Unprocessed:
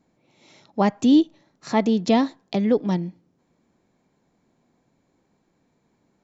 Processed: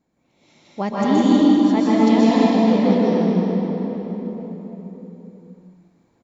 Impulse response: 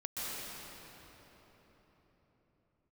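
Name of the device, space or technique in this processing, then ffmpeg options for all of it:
cave: -filter_complex "[0:a]aecho=1:1:153:0.376[s0];[1:a]atrim=start_sample=2205[s1];[s0][s1]afir=irnorm=-1:irlink=0"

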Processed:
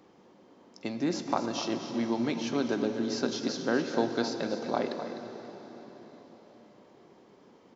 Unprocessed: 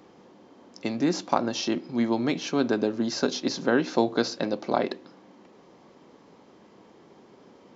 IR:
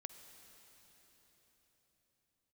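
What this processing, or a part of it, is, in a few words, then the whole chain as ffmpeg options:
cave: -filter_complex "[0:a]aecho=1:1:253:0.282[s0];[1:a]atrim=start_sample=2205[s1];[s0][s1]afir=irnorm=-1:irlink=0"

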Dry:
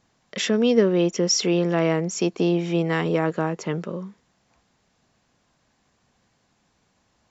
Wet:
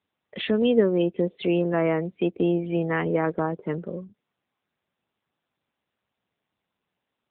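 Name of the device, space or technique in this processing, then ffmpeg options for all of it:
mobile call with aggressive noise cancelling: -filter_complex "[0:a]asettb=1/sr,asplit=3[s0][s1][s2];[s0]atrim=end=1.404[s3];[s1]atrim=start=1.4:end=2.03,asetpts=PTS-STARTPTS,afade=t=in:d=0.004:c=qsin,afade=t=out:st=0.626:d=0.004:c=qsin,lowpass=f=5000:w=0.5412,lowpass=f=5000:w=1.3066[s4];[s2]atrim=start=2.026[s5];[s3][s4]acrossfade=d=0.004:c1=hsin:c2=qsin[s6];[s6][s5]acrossfade=d=0.004:c1=qsin:c2=hsin,highpass=f=160:p=1,afftdn=nr=22:nf=-34" -ar 8000 -c:a libopencore_amrnb -b:a 7950

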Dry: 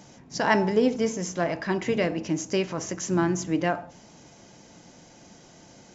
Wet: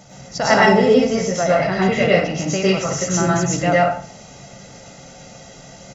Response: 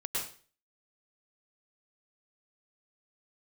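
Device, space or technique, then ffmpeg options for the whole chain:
microphone above a desk: -filter_complex "[0:a]aecho=1:1:1.5:0.59[s0];[1:a]atrim=start_sample=2205[s1];[s0][s1]afir=irnorm=-1:irlink=0,asettb=1/sr,asplit=3[s2][s3][s4];[s2]atrim=end=0.944[s5];[s3]atrim=start=0.94:end=2.77,asetpts=PTS-STARTPTS,afade=t=in:d=0.004:c=qsin,afade=t=out:st=1.826:d=0.004:c=qsin,lowpass=f=6300:w=0.5412,lowpass=f=6300:w=1.3066[s6];[s4]atrim=start=2.766[s7];[s5][s6]acrossfade=d=0.004:c1=hsin:c2=qsin[s8];[s8][s7]acrossfade=d=0.004:c1=qsin:c2=hsin,volume=2"

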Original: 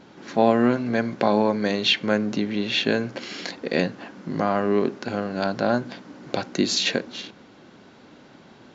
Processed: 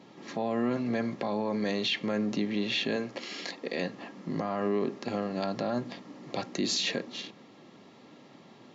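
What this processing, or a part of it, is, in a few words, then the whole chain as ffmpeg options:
PA system with an anti-feedback notch: -filter_complex "[0:a]asettb=1/sr,asplit=3[s0][s1][s2];[s0]atrim=end=2.964[s3];[s1]atrim=start=2.96:end=3.93,asetpts=PTS-STARTPTS,afade=t=in:d=0.004:c=qsin,afade=t=out:st=0.966:d=0.004:c=qsin,highpass=f=250:p=1[s4];[s2]atrim=start=3.926[s5];[s3][s4]acrossfade=d=0.004:c1=hsin:c2=qsin[s6];[s6][s5]acrossfade=d=0.004:c1=qsin:c2=hsin,highpass=f=110:w=0.5412,highpass=f=110:w=1.3066,asuperstop=centerf=1500:order=12:qfactor=7.9,alimiter=limit=0.15:level=0:latency=1:release=22,volume=0.631"

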